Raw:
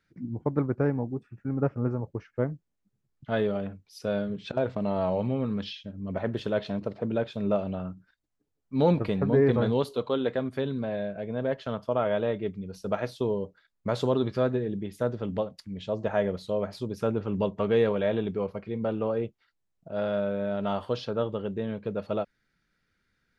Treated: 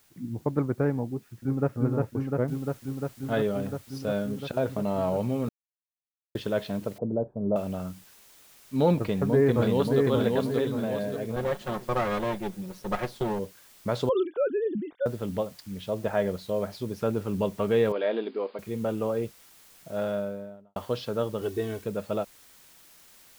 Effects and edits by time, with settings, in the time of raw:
1.07–1.74 s: echo throw 350 ms, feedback 85%, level -2 dB
2.48 s: noise floor step -63 dB -55 dB
5.49–6.35 s: mute
6.98–7.56 s: inverse Chebyshev low-pass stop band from 2.7 kHz, stop band 60 dB
8.97–10.04 s: echo throw 580 ms, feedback 45%, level -2.5 dB
11.36–13.39 s: comb filter that takes the minimum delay 5.5 ms
14.09–15.06 s: formants replaced by sine waves
17.92–18.59 s: brick-wall FIR band-pass 220–5000 Hz
19.95–20.76 s: studio fade out
21.41–21.84 s: comb 2.7 ms, depth 95%

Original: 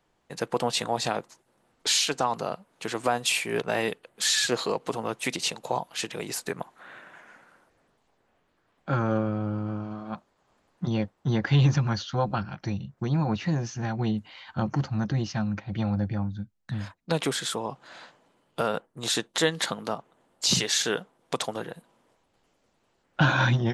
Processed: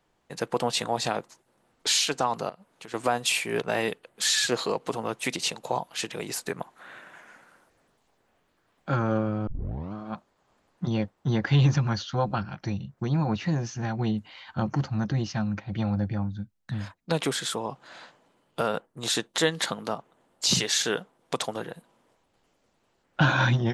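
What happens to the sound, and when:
2.49–2.94 s: compression, threshold -41 dBFS
6.76–8.96 s: treble shelf 4.8 kHz +6 dB
9.47 s: tape start 0.46 s

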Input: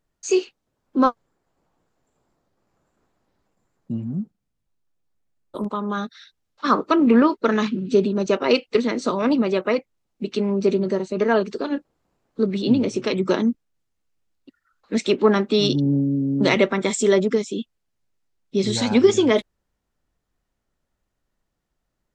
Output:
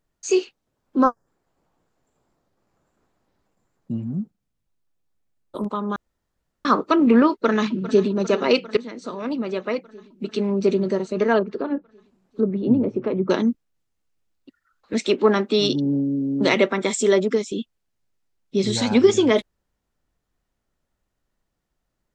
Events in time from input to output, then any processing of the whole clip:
1.03–1.27 s: time-frequency box 1.9–4.7 kHz -15 dB
5.96–6.65 s: room tone
7.30–8.10 s: echo throw 400 ms, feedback 75%, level -15 dB
8.77–10.60 s: fade in, from -14 dB
11.38–13.30 s: low-pass that closes with the level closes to 990 Hz, closed at -20 dBFS
14.93–17.52 s: high-pass 190 Hz

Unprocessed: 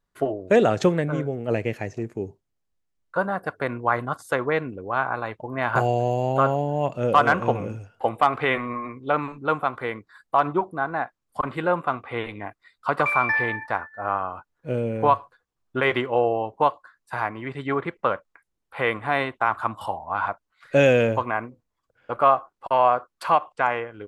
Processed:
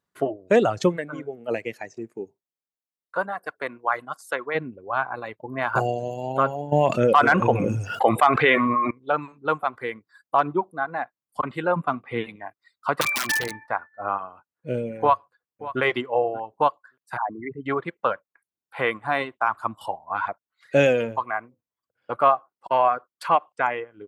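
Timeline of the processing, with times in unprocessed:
0.96–4.54 s: high-pass 190 Hz -> 790 Hz 6 dB/octave
6.72–8.91 s: level flattener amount 70%
11.76–12.36 s: peaking EQ 180 Hz +9.5 dB 1.4 oct
13.01–13.69 s: integer overflow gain 16 dB
15.01–15.81 s: echo throw 580 ms, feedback 10%, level -14 dB
17.17–17.66 s: resonances exaggerated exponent 3
whole clip: high-pass 110 Hz; reverb removal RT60 1.7 s

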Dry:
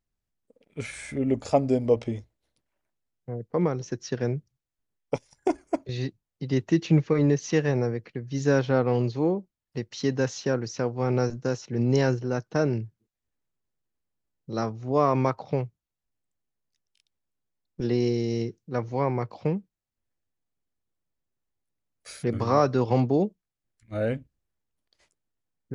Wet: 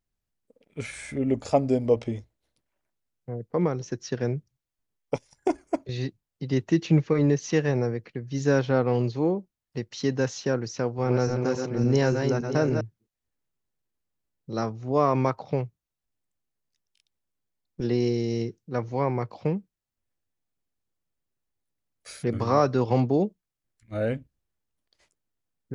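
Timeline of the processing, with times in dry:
10.70–12.81 s: backward echo that repeats 285 ms, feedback 47%, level -5 dB

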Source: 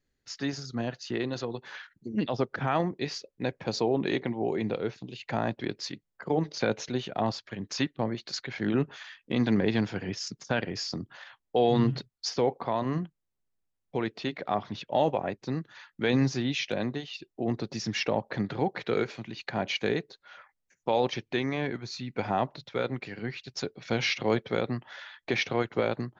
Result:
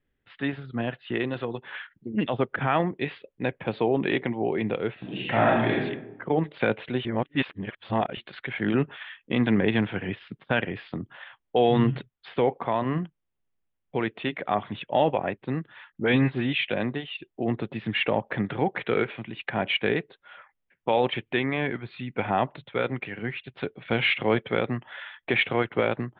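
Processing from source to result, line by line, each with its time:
4.93–5.78 s: reverb throw, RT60 0.95 s, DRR -5.5 dB
7.05–8.17 s: reverse
15.92–16.53 s: phase dispersion highs, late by 50 ms, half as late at 1.5 kHz
whole clip: dynamic bell 2.2 kHz, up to +4 dB, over -46 dBFS, Q 0.84; steep low-pass 3.5 kHz 72 dB/octave; trim +2.5 dB

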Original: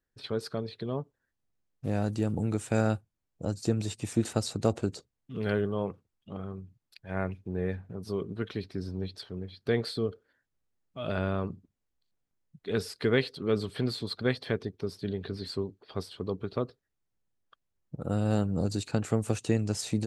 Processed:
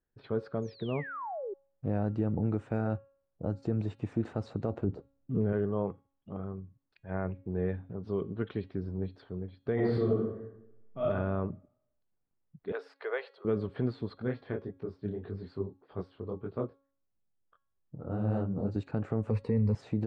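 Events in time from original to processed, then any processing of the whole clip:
0.62–1.54 s: painted sound fall 370–6900 Hz -37 dBFS
4.84–5.53 s: tilt shelf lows +9 dB
7.48–8.78 s: peaking EQ 3.3 kHz +8 dB
9.74–11.05 s: reverb throw, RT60 0.85 s, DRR -7 dB
12.72–13.45 s: inverse Chebyshev high-pass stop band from 260 Hz
14.18–18.76 s: detune thickener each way 59 cents
19.30–19.75 s: rippled EQ curve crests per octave 0.92, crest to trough 15 dB
whole clip: peak limiter -19 dBFS; low-pass 1.4 kHz 12 dB/octave; de-hum 275.8 Hz, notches 16

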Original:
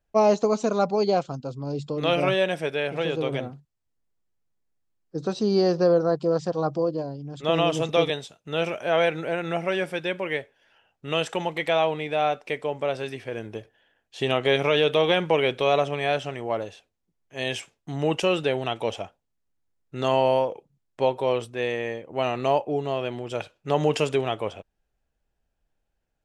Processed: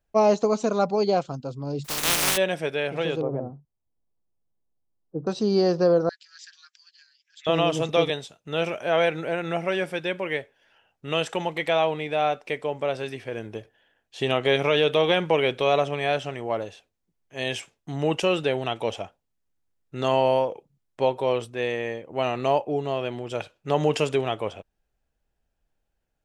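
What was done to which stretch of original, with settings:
1.84–2.36 s: spectral contrast reduction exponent 0.13
3.21–5.27 s: low-pass 1 kHz 24 dB/octave
6.09–7.47 s: Chebyshev band-pass 1.6–7.7 kHz, order 5

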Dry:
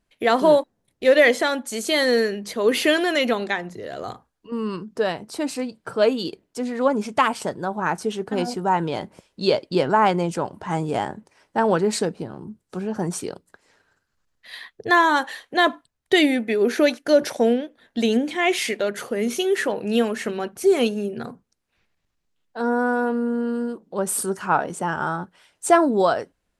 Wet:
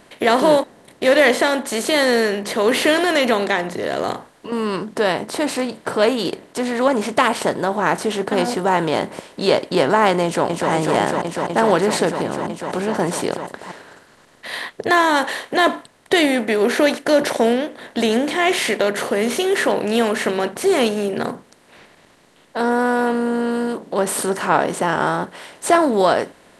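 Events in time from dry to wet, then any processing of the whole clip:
10.24–10.71 s: echo throw 250 ms, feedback 85%, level -4 dB
whole clip: spectral levelling over time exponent 0.6; trim -1 dB

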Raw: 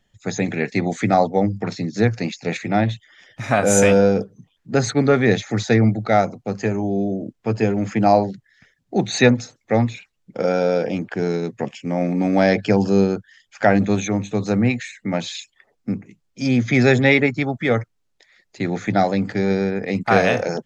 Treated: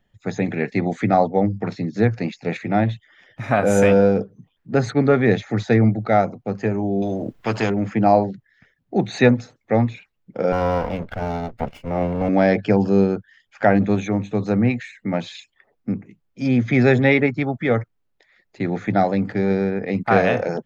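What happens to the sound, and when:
7.02–7.70 s: spectrum-flattening compressor 2:1
10.52–12.29 s: comb filter that takes the minimum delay 1.4 ms
whole clip: peaking EQ 7.1 kHz -12.5 dB 1.8 oct

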